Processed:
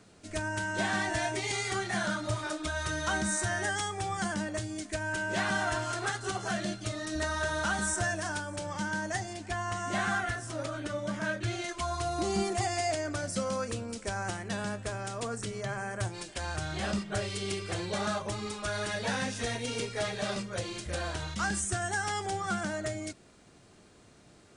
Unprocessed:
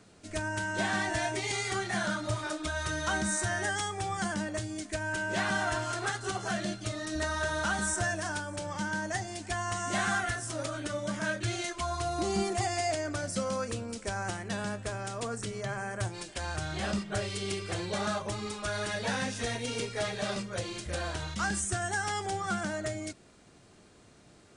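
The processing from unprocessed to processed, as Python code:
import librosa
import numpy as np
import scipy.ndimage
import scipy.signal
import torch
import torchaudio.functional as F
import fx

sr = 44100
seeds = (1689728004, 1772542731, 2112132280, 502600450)

y = fx.high_shelf(x, sr, hz=4900.0, db=-8.0, at=(9.33, 11.69))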